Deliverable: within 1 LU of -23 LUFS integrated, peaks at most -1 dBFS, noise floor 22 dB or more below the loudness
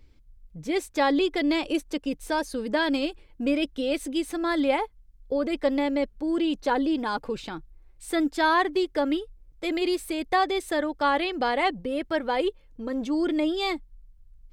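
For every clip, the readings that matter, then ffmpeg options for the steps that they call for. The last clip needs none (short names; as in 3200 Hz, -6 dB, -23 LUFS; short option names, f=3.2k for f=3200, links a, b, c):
loudness -26.5 LUFS; peak -11.0 dBFS; loudness target -23.0 LUFS
-> -af "volume=3.5dB"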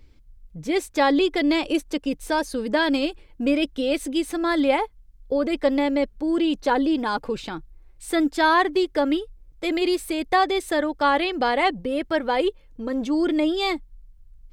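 loudness -23.0 LUFS; peak -7.5 dBFS; noise floor -52 dBFS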